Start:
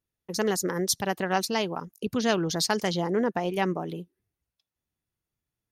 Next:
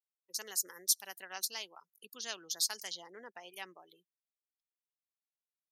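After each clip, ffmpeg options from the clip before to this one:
ffmpeg -i in.wav -af "aderivative,afftdn=noise_reduction=20:noise_floor=-52,highpass=170,volume=-2dB" out.wav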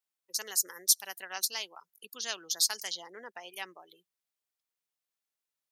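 ffmpeg -i in.wav -af "lowshelf=frequency=320:gain=-6,acontrast=35" out.wav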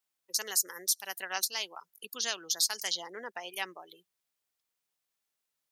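ffmpeg -i in.wav -af "alimiter=limit=-20dB:level=0:latency=1:release=259,volume=4.5dB" out.wav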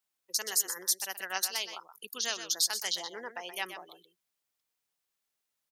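ffmpeg -i in.wav -af "aecho=1:1:125:0.316" out.wav

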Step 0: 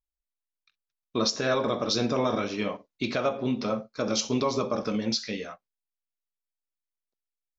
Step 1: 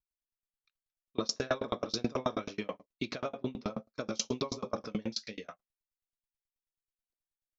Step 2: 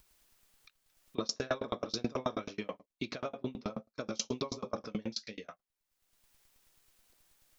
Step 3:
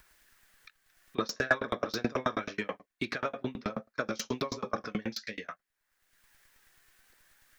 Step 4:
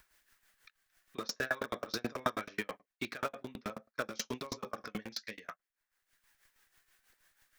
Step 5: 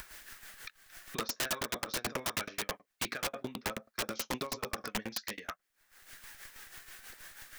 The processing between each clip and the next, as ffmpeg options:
ffmpeg -i in.wav -af "aeval=exprs='val(0)*pow(10,-32*if(lt(mod(9.3*n/s,1),2*abs(9.3)/1000),1-mod(9.3*n/s,1)/(2*abs(9.3)/1000),(mod(9.3*n/s,1)-2*abs(9.3)/1000)/(1-2*abs(9.3)/1000))/20)':channel_layout=same" out.wav
ffmpeg -i in.wav -af "acompressor=mode=upward:threshold=-43dB:ratio=2.5,volume=-2dB" out.wav
ffmpeg -i in.wav -filter_complex "[0:a]equalizer=frequency=1700:width=1.9:gain=13,acrossover=split=480|1800[link_01][link_02][link_03];[link_02]aphaser=in_gain=1:out_gain=1:delay=2.8:decay=0.38:speed=0.51:type=sinusoidal[link_04];[link_03]asoftclip=type=tanh:threshold=-31.5dB[link_05];[link_01][link_04][link_05]amix=inputs=3:normalize=0,volume=2.5dB" out.wav
ffmpeg -i in.wav -filter_complex "[0:a]lowshelf=frequency=420:gain=-3.5,asplit=2[link_01][link_02];[link_02]acrusher=bits=4:mix=0:aa=0.000001,volume=-9dB[link_03];[link_01][link_03]amix=inputs=2:normalize=0,tremolo=f=6.2:d=0.64,volume=-3dB" out.wav
ffmpeg -i in.wav -af "bandreject=frequency=1000:width=23,acompressor=mode=upward:threshold=-41dB:ratio=2.5,aeval=exprs='(mod(31.6*val(0)+1,2)-1)/31.6':channel_layout=same,volume=5dB" out.wav

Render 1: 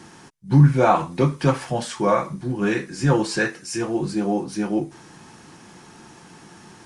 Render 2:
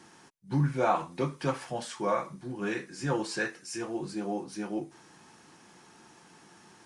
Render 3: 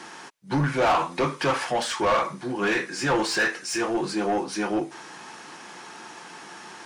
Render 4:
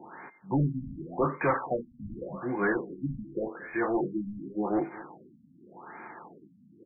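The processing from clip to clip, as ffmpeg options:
ffmpeg -i in.wav -af "lowshelf=frequency=180:gain=-9.5,volume=-8.5dB" out.wav
ffmpeg -i in.wav -filter_complex "[0:a]asplit=2[link_01][link_02];[link_02]highpass=frequency=720:poles=1,volume=23dB,asoftclip=type=tanh:threshold=-13.5dB[link_03];[link_01][link_03]amix=inputs=2:normalize=0,lowpass=frequency=3900:poles=1,volume=-6dB" out.wav
ffmpeg -i in.wav -af "aeval=exprs='val(0)+0.00178*sin(2*PI*2100*n/s)':channel_layout=same,aecho=1:1:227:0.106,afftfilt=real='re*lt(b*sr/1024,260*pow(2500/260,0.5+0.5*sin(2*PI*0.87*pts/sr)))':imag='im*lt(b*sr/1024,260*pow(2500/260,0.5+0.5*sin(2*PI*0.87*pts/sr)))':win_size=1024:overlap=0.75,volume=-2dB" out.wav

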